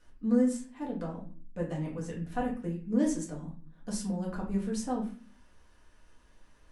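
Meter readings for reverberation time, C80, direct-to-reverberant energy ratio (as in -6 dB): 0.40 s, 12.0 dB, -4.0 dB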